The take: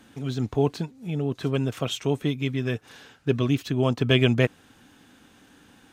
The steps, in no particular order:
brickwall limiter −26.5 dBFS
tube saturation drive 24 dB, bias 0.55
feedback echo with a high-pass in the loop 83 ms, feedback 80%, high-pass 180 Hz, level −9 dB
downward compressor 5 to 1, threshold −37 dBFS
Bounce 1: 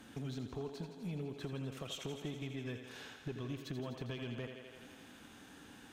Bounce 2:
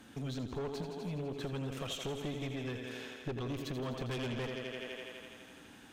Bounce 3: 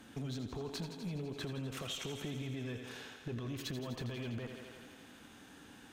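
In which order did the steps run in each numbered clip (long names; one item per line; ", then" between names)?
downward compressor, then feedback echo with a high-pass in the loop, then brickwall limiter, then tube saturation
feedback echo with a high-pass in the loop, then tube saturation, then downward compressor, then brickwall limiter
brickwall limiter, then feedback echo with a high-pass in the loop, then tube saturation, then downward compressor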